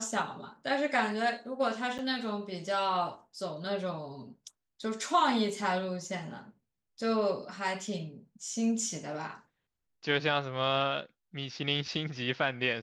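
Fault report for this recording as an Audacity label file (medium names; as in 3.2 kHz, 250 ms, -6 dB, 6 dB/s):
1.980000	1.990000	dropout 8.3 ms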